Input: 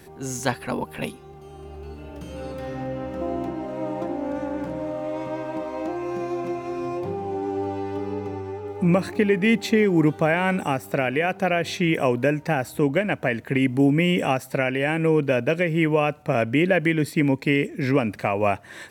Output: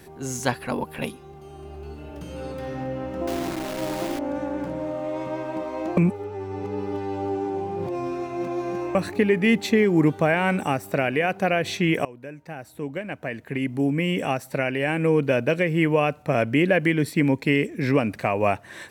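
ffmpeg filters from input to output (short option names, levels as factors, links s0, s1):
-filter_complex "[0:a]asettb=1/sr,asplit=3[s0][s1][s2];[s0]atrim=end=3.274[s3];[s1]atrim=start=3.27:end=4.19,asetpts=PTS-STARTPTS,afade=t=in:d=0.004:c=qsin,afade=t=out:st=0.916:d=0.004:c=qsin,acrusher=bits=6:dc=4:mix=0:aa=0.000001[s4];[s2]atrim=start=4.186[s5];[s3][s4]acrossfade=d=0.004:c1=hsin:c2=qsin[s6];[s6][s5]acrossfade=d=0.004:c1=qsin:c2=hsin,asplit=4[s7][s8][s9][s10];[s7]atrim=end=5.972[s11];[s8]atrim=start=5.968:end=8.952,asetpts=PTS-STARTPTS,areverse[s12];[s9]atrim=start=8.948:end=12.05,asetpts=PTS-STARTPTS,afade=t=out:st=3.098:d=0.004:c=hsin:silence=0.0707946[s13];[s10]atrim=start=12.05,asetpts=PTS-STARTPTS,afade=t=in:d=3.21:silence=0.0707946[s14];[s11][s12]acrossfade=d=0.004:c1=hsin:c2=hsin[s15];[s13][s14]concat=n=2:v=0:a=1[s16];[s15][s16]acrossfade=d=0.004:c1=hsin:c2=hsin"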